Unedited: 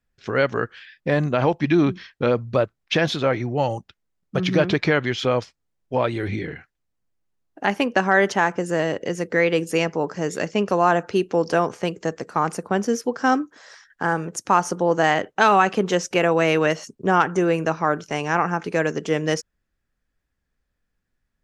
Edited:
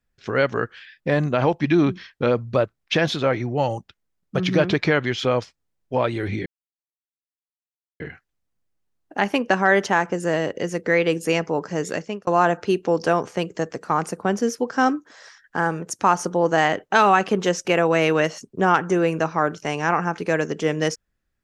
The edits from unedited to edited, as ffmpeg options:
ffmpeg -i in.wav -filter_complex "[0:a]asplit=3[link_01][link_02][link_03];[link_01]atrim=end=6.46,asetpts=PTS-STARTPTS,afade=type=out:start_time=6.456:duration=0.004:curve=hsin,apad=pad_dur=1.54[link_04];[link_02]atrim=start=6.46:end=10.73,asetpts=PTS-STARTPTS,afade=type=in:duration=0.004:curve=hsin,afade=type=out:start_time=3.9:duration=0.37[link_05];[link_03]atrim=start=10.73,asetpts=PTS-STARTPTS,afade=type=in:duration=0.004:curve=hsin[link_06];[link_04][link_05][link_06]concat=n=3:v=0:a=1" out.wav

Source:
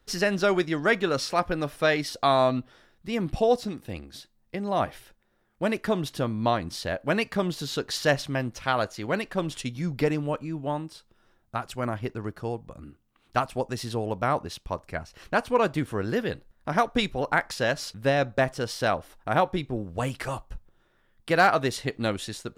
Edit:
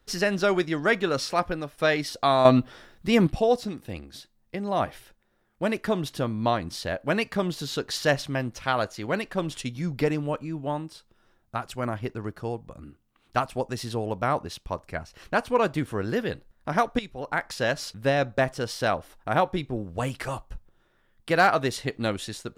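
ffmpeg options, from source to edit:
ffmpeg -i in.wav -filter_complex "[0:a]asplit=5[link_01][link_02][link_03][link_04][link_05];[link_01]atrim=end=1.78,asetpts=PTS-STARTPTS,afade=type=out:start_time=1.45:duration=0.33:silence=0.251189[link_06];[link_02]atrim=start=1.78:end=2.452,asetpts=PTS-STARTPTS,afade=type=in:duration=0.004:curve=hsin:silence=0.251189[link_07];[link_03]atrim=start=2.448:end=3.272,asetpts=PTS-STARTPTS,volume=8.5dB[link_08];[link_04]atrim=start=3.268:end=16.99,asetpts=PTS-STARTPTS,afade=type=out:start_time=13.718:duration=0.004:curve=hsin:silence=0.199526[link_09];[link_05]atrim=start=16.99,asetpts=PTS-STARTPTS,afade=type=in:duration=0.66:silence=0.199526[link_10];[link_06][link_07]concat=n=2:v=0:a=1[link_11];[link_11][link_08]acrossfade=duration=0.004:curve1=hsin:curve2=hsin[link_12];[link_09][link_10]concat=n=2:v=0:a=1[link_13];[link_12][link_13]acrossfade=duration=0.004:curve1=hsin:curve2=hsin" out.wav

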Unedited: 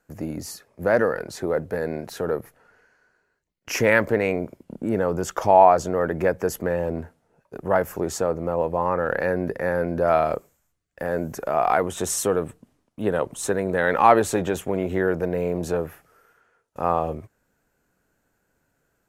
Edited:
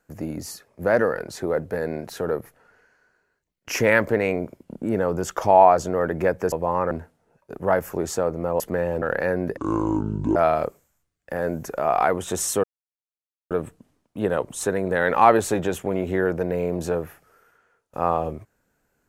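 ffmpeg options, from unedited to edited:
ffmpeg -i in.wav -filter_complex "[0:a]asplit=8[link_01][link_02][link_03][link_04][link_05][link_06][link_07][link_08];[link_01]atrim=end=6.522[link_09];[link_02]atrim=start=8.628:end=9.022[link_10];[link_03]atrim=start=6.938:end=8.632[link_11];[link_04]atrim=start=6.518:end=6.942[link_12];[link_05]atrim=start=9.018:end=9.574[link_13];[link_06]atrim=start=9.57:end=10.05,asetpts=PTS-STARTPTS,asetrate=26901,aresample=44100[link_14];[link_07]atrim=start=10.046:end=12.33,asetpts=PTS-STARTPTS,afade=type=out:start_time=2.28:duration=0.004:curve=hsin,apad=pad_dur=0.87[link_15];[link_08]atrim=start=12.33,asetpts=PTS-STARTPTS,afade=type=in:duration=0.004:curve=hsin[link_16];[link_09][link_10]acrossfade=duration=0.004:curve1=hsin:curve2=hsin[link_17];[link_17][link_11]acrossfade=duration=0.004:curve1=hsin:curve2=hsin[link_18];[link_18][link_12]acrossfade=duration=0.004:curve1=hsin:curve2=hsin[link_19];[link_19][link_13]acrossfade=duration=0.004:curve1=hsin:curve2=hsin[link_20];[link_20][link_14]acrossfade=duration=0.004:curve1=hsin:curve2=hsin[link_21];[link_15][link_16]concat=n=2:v=0:a=1[link_22];[link_21][link_22]acrossfade=duration=0.004:curve1=hsin:curve2=hsin" out.wav

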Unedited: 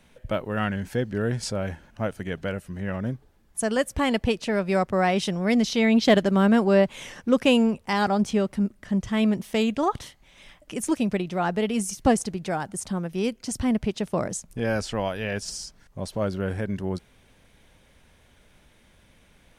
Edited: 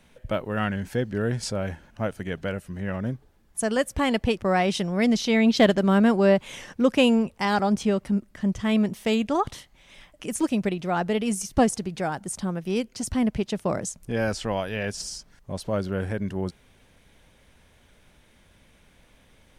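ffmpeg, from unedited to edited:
ffmpeg -i in.wav -filter_complex "[0:a]asplit=2[link_01][link_02];[link_01]atrim=end=4.382[link_03];[link_02]atrim=start=4.858[link_04];[link_03][link_04]acrossfade=duration=0.004:curve1=hsin:curve2=hsin" out.wav

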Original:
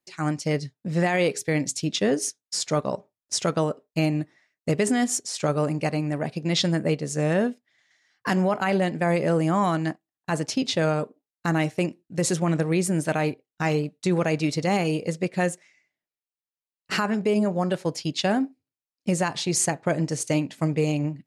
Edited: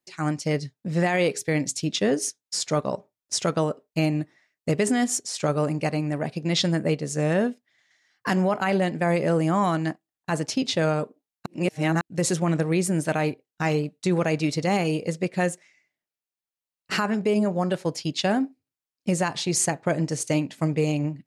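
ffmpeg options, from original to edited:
ffmpeg -i in.wav -filter_complex "[0:a]asplit=3[link_01][link_02][link_03];[link_01]atrim=end=11.462[link_04];[link_02]atrim=start=11.458:end=12.012,asetpts=PTS-STARTPTS,areverse[link_05];[link_03]atrim=start=12.008[link_06];[link_04][link_05]acrossfade=duration=0.004:curve1=hsin:curve2=hsin[link_07];[link_07][link_06]acrossfade=duration=0.004:curve1=hsin:curve2=hsin" out.wav

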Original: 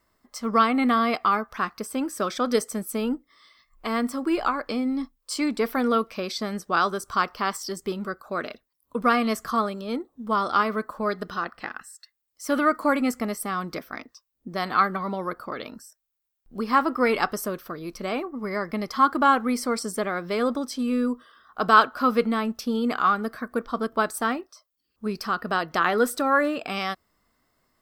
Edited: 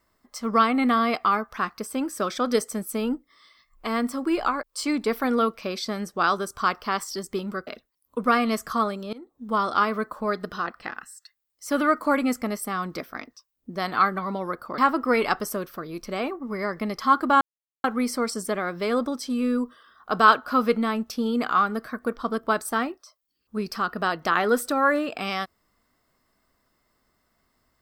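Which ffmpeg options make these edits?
ffmpeg -i in.wav -filter_complex "[0:a]asplit=6[link_01][link_02][link_03][link_04][link_05][link_06];[link_01]atrim=end=4.632[link_07];[link_02]atrim=start=5.158:end=8.202[link_08];[link_03]atrim=start=8.448:end=9.91,asetpts=PTS-STARTPTS,afade=type=out:start_time=1.458:duration=0.004:curve=hsin:silence=0.0707946[link_09];[link_04]atrim=start=9.91:end=15.562,asetpts=PTS-STARTPTS,afade=type=in:duration=0.35:silence=0.0707946[link_10];[link_05]atrim=start=16.698:end=19.33,asetpts=PTS-STARTPTS,afade=type=out:start_time=2.628:duration=0.004:curve=hsin,apad=pad_dur=0.43[link_11];[link_06]atrim=start=19.33,asetpts=PTS-STARTPTS,afade=type=in:duration=0.004:curve=hsin[link_12];[link_07][link_08]acrossfade=duration=0.004:curve1=hsin:curve2=hsin[link_13];[link_09][link_10]concat=n=2:v=0:a=1[link_14];[link_13][link_14]acrossfade=duration=0.004:curve1=hsin:curve2=hsin[link_15];[link_11][link_12]concat=n=2:v=0:a=1[link_16];[link_15][link_16]acrossfade=duration=0.004:curve1=hsin:curve2=hsin" out.wav

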